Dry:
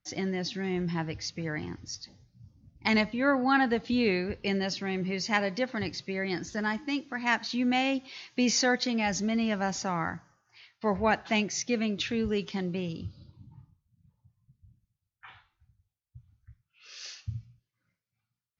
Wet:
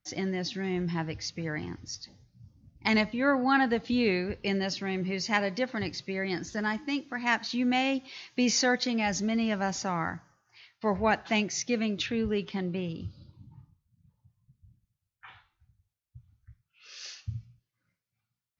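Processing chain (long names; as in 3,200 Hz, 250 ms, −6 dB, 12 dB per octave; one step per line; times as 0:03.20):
0:12.06–0:13.01: low-pass filter 4,000 Hz 12 dB per octave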